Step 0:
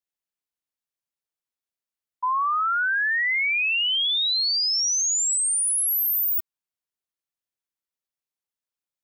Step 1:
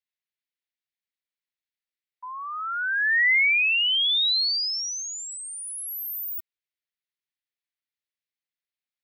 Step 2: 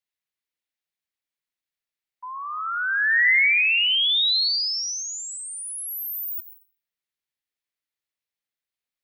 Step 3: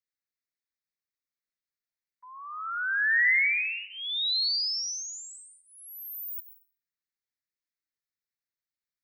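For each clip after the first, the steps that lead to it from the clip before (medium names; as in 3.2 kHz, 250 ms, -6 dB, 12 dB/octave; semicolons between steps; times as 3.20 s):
graphic EQ 1/2/4/8 kHz -8/+12/+8/-7 dB; trim -8 dB
plate-style reverb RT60 1.1 s, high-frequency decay 0.4×, pre-delay 85 ms, DRR 9 dB; trim +1.5 dB
static phaser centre 3 kHz, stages 6; trim -4 dB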